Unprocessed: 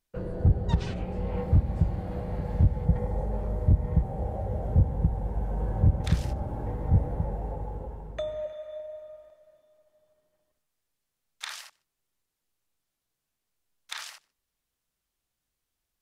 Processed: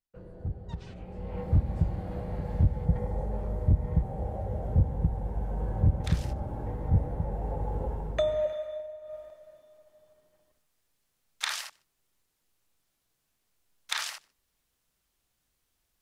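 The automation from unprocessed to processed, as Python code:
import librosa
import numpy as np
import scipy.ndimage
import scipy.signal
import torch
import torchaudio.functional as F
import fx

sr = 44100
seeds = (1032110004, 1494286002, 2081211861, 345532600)

y = fx.gain(x, sr, db=fx.line((0.81, -13.0), (1.58, -2.0), (7.23, -2.0), (7.88, 6.0), (8.55, 6.0), (9.0, -3.0), (9.14, 6.0)))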